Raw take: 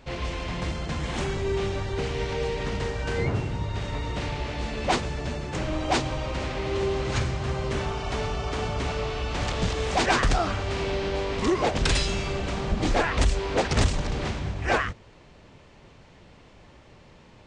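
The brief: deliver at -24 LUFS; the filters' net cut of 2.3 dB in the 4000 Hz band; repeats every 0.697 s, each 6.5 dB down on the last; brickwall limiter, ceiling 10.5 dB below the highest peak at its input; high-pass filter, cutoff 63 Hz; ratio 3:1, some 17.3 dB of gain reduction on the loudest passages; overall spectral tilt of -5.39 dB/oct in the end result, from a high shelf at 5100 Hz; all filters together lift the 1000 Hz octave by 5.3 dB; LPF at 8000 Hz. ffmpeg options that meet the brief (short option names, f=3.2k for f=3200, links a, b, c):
-af "highpass=63,lowpass=8k,equalizer=f=1k:t=o:g=7,equalizer=f=4k:t=o:g=-5.5,highshelf=f=5.1k:g=5,acompressor=threshold=-40dB:ratio=3,alimiter=level_in=10dB:limit=-24dB:level=0:latency=1,volume=-10dB,aecho=1:1:697|1394|2091|2788|3485|4182:0.473|0.222|0.105|0.0491|0.0231|0.0109,volume=18dB"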